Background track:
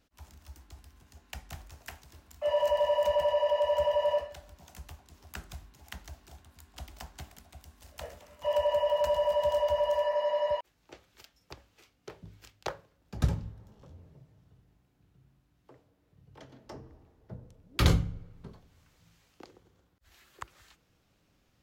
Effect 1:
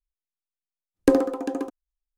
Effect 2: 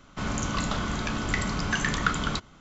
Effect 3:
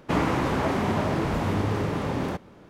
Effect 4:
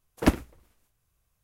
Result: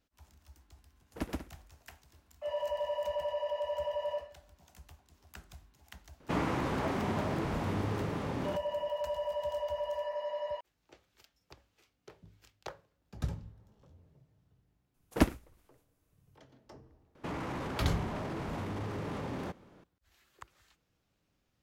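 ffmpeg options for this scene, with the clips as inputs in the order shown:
ffmpeg -i bed.wav -i cue0.wav -i cue1.wav -i cue2.wav -i cue3.wav -filter_complex "[4:a]asplit=2[link_01][link_02];[3:a]asplit=2[link_03][link_04];[0:a]volume=-8dB[link_05];[link_01]aecho=1:1:125.4|189.5:0.794|0.251[link_06];[link_04]alimiter=limit=-22dB:level=0:latency=1:release=12[link_07];[link_06]atrim=end=1.43,asetpts=PTS-STARTPTS,volume=-16.5dB,afade=type=in:duration=0.004:curve=hsin,afade=type=out:start_time=1.426:duration=0.004:curve=hsin,adelay=940[link_08];[link_03]atrim=end=2.69,asetpts=PTS-STARTPTS,volume=-8dB,afade=type=in:duration=0.004:curve=hsin,afade=type=out:start_time=2.686:duration=0.004:curve=hsin,adelay=6200[link_09];[link_02]atrim=end=1.43,asetpts=PTS-STARTPTS,volume=-4.5dB,afade=type=in:duration=0.004:curve=hsin,afade=type=out:start_time=1.426:duration=0.004:curve=hsin,adelay=14940[link_10];[link_07]atrim=end=2.69,asetpts=PTS-STARTPTS,volume=-8.5dB,afade=type=in:duration=0.004:curve=hsin,afade=type=out:start_time=2.686:duration=0.004:curve=hsin,adelay=17150[link_11];[link_05][link_08][link_09][link_10][link_11]amix=inputs=5:normalize=0" out.wav

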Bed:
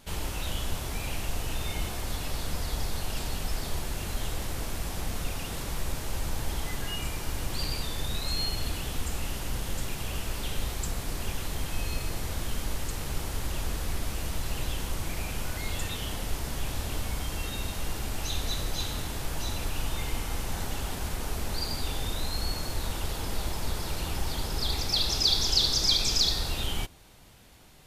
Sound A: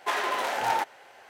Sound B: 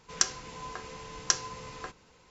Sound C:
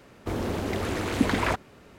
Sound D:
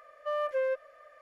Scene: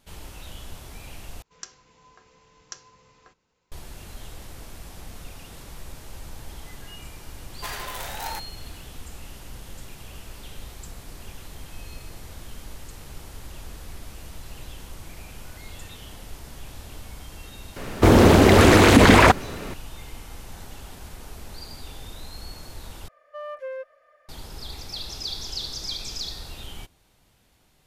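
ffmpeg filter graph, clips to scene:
ffmpeg -i bed.wav -i cue0.wav -i cue1.wav -i cue2.wav -i cue3.wav -filter_complex "[0:a]volume=-8dB[link_01];[1:a]aemphasis=mode=production:type=75fm[link_02];[3:a]alimiter=level_in=18dB:limit=-1dB:release=50:level=0:latency=1[link_03];[link_01]asplit=3[link_04][link_05][link_06];[link_04]atrim=end=1.424[link_07];[2:a]atrim=end=2.3,asetpts=PTS-STARTPTS,volume=-14dB[link_08];[link_05]atrim=start=3.716:end=23.084[link_09];[4:a]atrim=end=1.21,asetpts=PTS-STARTPTS,volume=-4.5dB[link_10];[link_06]atrim=start=24.286[link_11];[link_02]atrim=end=1.29,asetpts=PTS-STARTPTS,volume=-8.5dB,afade=type=in:duration=0.004:curve=hsin,afade=type=out:start_time=1.286:duration=0.004:curve=hsin,adelay=7560[link_12];[link_03]atrim=end=1.98,asetpts=PTS-STARTPTS,volume=-1.5dB,afade=type=in:duration=0.004:curve=hsin,afade=type=out:start_time=1.976:duration=0.004:curve=hsin,adelay=17760[link_13];[link_07][link_08]acrossfade=duration=0.004:curve1=hsin:curve2=hsin[link_14];[link_14][link_09]acrossfade=duration=0.004:curve1=hsin:curve2=hsin[link_15];[link_15][link_10]acrossfade=duration=0.004:curve1=hsin:curve2=hsin[link_16];[link_16][link_11]acrossfade=duration=0.004:curve1=hsin:curve2=hsin[link_17];[link_17][link_12][link_13]amix=inputs=3:normalize=0" out.wav

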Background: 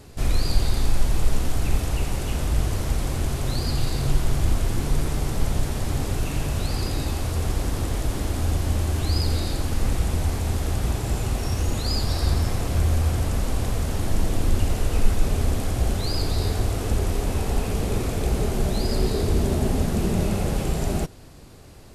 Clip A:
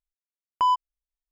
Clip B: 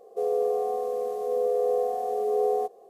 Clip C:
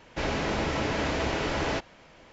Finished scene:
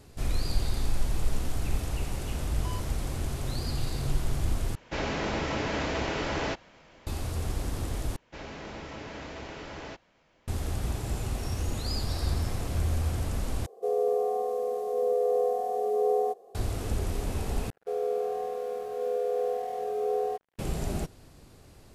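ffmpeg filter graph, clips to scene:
ffmpeg -i bed.wav -i cue0.wav -i cue1.wav -i cue2.wav -filter_complex "[3:a]asplit=2[link_01][link_02];[2:a]asplit=2[link_03][link_04];[0:a]volume=-7dB[link_05];[1:a]asoftclip=type=tanh:threshold=-32dB[link_06];[link_04]aeval=exprs='sgn(val(0))*max(abs(val(0))-0.00501,0)':channel_layout=same[link_07];[link_05]asplit=5[link_08][link_09][link_10][link_11][link_12];[link_08]atrim=end=4.754[link_13];[link_01]atrim=end=2.32,asetpts=PTS-STARTPTS,volume=-2dB[link_14];[link_09]atrim=start=7.066:end=8.164[link_15];[link_02]atrim=end=2.32,asetpts=PTS-STARTPTS,volume=-12.5dB[link_16];[link_10]atrim=start=10.476:end=13.664[link_17];[link_03]atrim=end=2.89,asetpts=PTS-STARTPTS,volume=-1dB[link_18];[link_11]atrim=start=16.546:end=17.704[link_19];[link_07]atrim=end=2.89,asetpts=PTS-STARTPTS,volume=-3.5dB[link_20];[link_12]atrim=start=20.586[link_21];[link_06]atrim=end=1.31,asetpts=PTS-STARTPTS,volume=-10dB,afade=type=in:duration=0.004:curve=hsin,afade=type=out:start_time=1.306:duration=0.004:curve=hsin,adelay=2040[link_22];[link_13][link_14]acrossfade=duration=0.004:curve1=hsin:curve2=hsin[link_23];[link_23][link_15]acrossfade=duration=0.004:curve1=hsin:curve2=hsin[link_24];[link_24][link_16]acrossfade=duration=0.004:curve1=hsin:curve2=hsin[link_25];[link_25][link_17]acrossfade=duration=0.004:curve1=hsin:curve2=hsin[link_26];[link_26][link_18]acrossfade=duration=0.004:curve1=hsin:curve2=hsin[link_27];[link_27][link_19]acrossfade=duration=0.004:curve1=hsin:curve2=hsin[link_28];[link_28][link_20]acrossfade=duration=0.004:curve1=hsin:curve2=hsin[link_29];[link_29][link_21]acrossfade=duration=0.004:curve1=hsin:curve2=hsin[link_30];[link_30][link_22]amix=inputs=2:normalize=0" out.wav

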